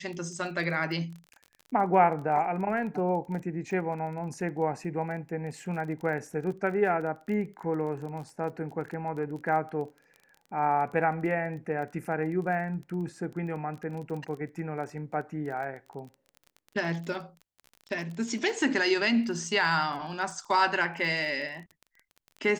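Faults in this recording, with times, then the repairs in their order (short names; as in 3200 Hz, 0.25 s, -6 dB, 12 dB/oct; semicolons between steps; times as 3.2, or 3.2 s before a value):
crackle 23/s -38 dBFS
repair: de-click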